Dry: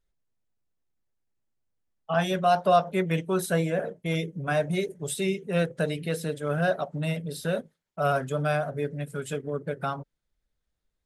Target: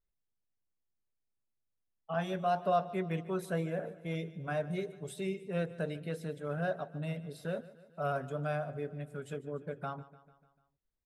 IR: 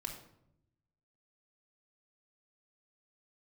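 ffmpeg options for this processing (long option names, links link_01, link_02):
-af "highshelf=frequency=3200:gain=-9,aecho=1:1:148|296|444|592|740:0.126|0.0718|0.0409|0.0233|0.0133,volume=-8.5dB"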